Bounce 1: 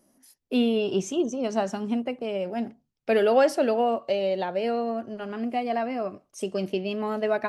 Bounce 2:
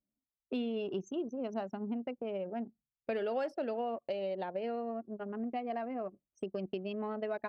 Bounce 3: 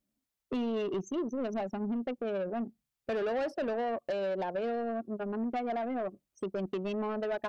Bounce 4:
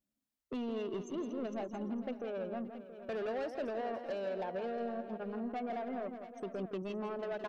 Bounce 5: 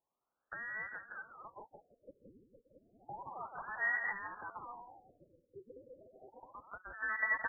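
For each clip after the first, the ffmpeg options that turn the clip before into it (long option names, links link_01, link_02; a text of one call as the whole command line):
ffmpeg -i in.wav -af "anlmdn=39.8,highpass=52,acompressor=threshold=-32dB:ratio=3,volume=-3.5dB" out.wav
ffmpeg -i in.wav -af "asoftclip=type=tanh:threshold=-35dB,volume=7dB" out.wav
ffmpeg -i in.wav -af "aecho=1:1:166|457|574|675:0.355|0.168|0.1|0.224,volume=-6dB" out.wav
ffmpeg -i in.wav -af "acompressor=threshold=-42dB:ratio=6,lowpass=frequency=2200:width_type=q:width=0.5098,lowpass=frequency=2200:width_type=q:width=0.6013,lowpass=frequency=2200:width_type=q:width=0.9,lowpass=frequency=2200:width_type=q:width=2.563,afreqshift=-2600,afftfilt=real='re*lt(b*sr/1024,550*pow(2000/550,0.5+0.5*sin(2*PI*0.31*pts/sr)))':imag='im*lt(b*sr/1024,550*pow(2000/550,0.5+0.5*sin(2*PI*0.31*pts/sr)))':win_size=1024:overlap=0.75,volume=14.5dB" out.wav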